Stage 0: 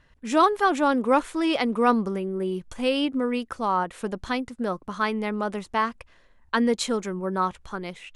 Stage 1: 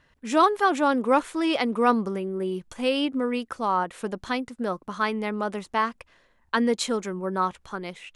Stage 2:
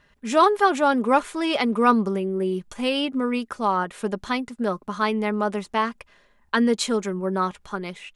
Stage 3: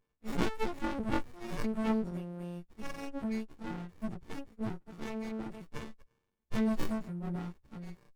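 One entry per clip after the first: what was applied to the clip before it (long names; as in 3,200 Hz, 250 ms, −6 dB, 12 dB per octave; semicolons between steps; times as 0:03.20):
low-shelf EQ 84 Hz −10 dB
comb filter 4.9 ms, depth 37%; level +2 dB
every partial snapped to a pitch grid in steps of 4 semitones; noise reduction from a noise print of the clip's start 13 dB; windowed peak hold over 65 samples; level −7 dB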